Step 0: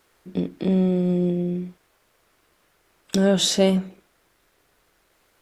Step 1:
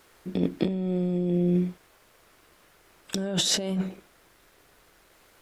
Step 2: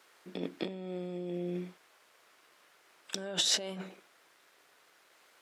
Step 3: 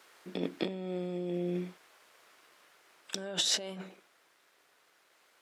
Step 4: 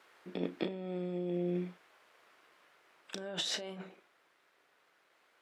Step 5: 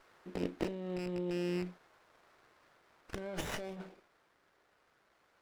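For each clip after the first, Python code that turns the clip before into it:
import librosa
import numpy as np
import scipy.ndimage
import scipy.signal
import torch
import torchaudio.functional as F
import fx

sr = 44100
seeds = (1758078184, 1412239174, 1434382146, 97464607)

y1 = fx.over_compress(x, sr, threshold_db=-26.0, ratio=-1.0)
y2 = fx.weighting(y1, sr, curve='A')
y2 = F.gain(torch.from_numpy(y2), -4.0).numpy()
y3 = fx.rider(y2, sr, range_db=3, speed_s=2.0)
y4 = fx.bass_treble(y3, sr, bass_db=0, treble_db=-9)
y4 = fx.doubler(y4, sr, ms=34.0, db=-13.5)
y4 = F.gain(torch.from_numpy(y4), -2.0).numpy()
y5 = fx.rattle_buzz(y4, sr, strikes_db=-39.0, level_db=-32.0)
y5 = fx.running_max(y5, sr, window=9)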